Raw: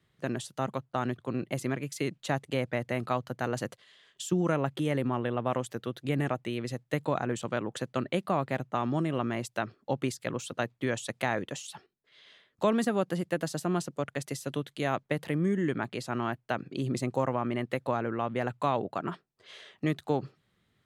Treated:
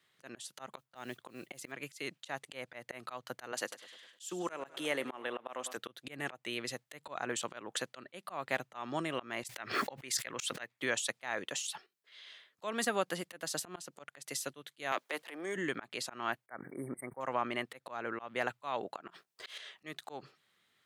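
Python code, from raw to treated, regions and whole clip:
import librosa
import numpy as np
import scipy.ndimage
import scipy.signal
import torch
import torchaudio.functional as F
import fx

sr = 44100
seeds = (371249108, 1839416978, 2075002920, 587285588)

y = fx.chain(x, sr, fx.dynamic_eq(hz=1200.0, q=1.4, threshold_db=-44.0, ratio=4.0, max_db=-6),
    fx.mod_noise(seeds[0], snr_db=33), at=(0.78, 1.72))
y = fx.chain(y, sr, fx.highpass(hz=240.0, slope=12),
    fx.echo_feedback(ms=102, feedback_pct=58, wet_db=-18), at=(3.52, 5.77))
y = fx.chain(y, sr, fx.peak_eq(hz=2000.0, db=7.5, octaves=0.6),
    fx.pre_swell(db_per_s=24.0), at=(9.44, 10.8))
y = fx.chain(y, sr, fx.transient(attack_db=-11, sustain_db=8),
    fx.highpass(hz=270.0, slope=24),
    fx.band_squash(depth_pct=40), at=(14.92, 15.56))
y = fx.chain(y, sr, fx.transient(attack_db=0, sustain_db=-11),
    fx.brickwall_bandstop(low_hz=2300.0, high_hz=8200.0),
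    fx.sustainer(db_per_s=61.0), at=(16.46, 17.21))
y = fx.chain(y, sr, fx.high_shelf(hz=9000.0, db=2.0),
    fx.over_compress(threshold_db=-50.0, ratio=-1.0),
    fx.leveller(passes=2), at=(19.1, 19.58))
y = fx.highpass(y, sr, hz=1300.0, slope=6)
y = fx.auto_swell(y, sr, attack_ms=218.0)
y = y * 10.0 ** (4.5 / 20.0)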